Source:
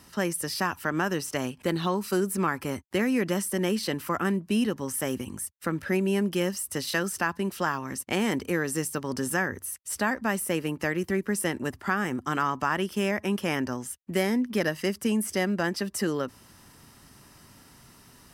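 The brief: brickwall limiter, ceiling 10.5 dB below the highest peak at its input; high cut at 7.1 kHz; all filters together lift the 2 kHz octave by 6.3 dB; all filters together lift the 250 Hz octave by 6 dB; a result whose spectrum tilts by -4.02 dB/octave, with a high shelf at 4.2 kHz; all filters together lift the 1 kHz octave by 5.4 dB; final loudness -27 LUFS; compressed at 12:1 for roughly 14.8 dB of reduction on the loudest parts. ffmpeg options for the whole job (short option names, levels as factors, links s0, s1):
-af "lowpass=7100,equalizer=f=250:t=o:g=7.5,equalizer=f=1000:t=o:g=4.5,equalizer=f=2000:t=o:g=5,highshelf=f=4200:g=6.5,acompressor=threshold=0.0316:ratio=12,volume=2.82,alimiter=limit=0.158:level=0:latency=1"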